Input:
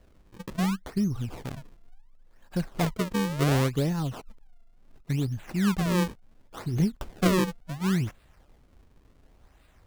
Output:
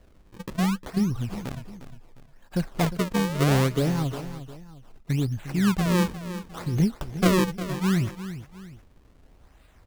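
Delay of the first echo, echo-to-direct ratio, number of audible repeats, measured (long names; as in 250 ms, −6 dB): 355 ms, −12.0 dB, 2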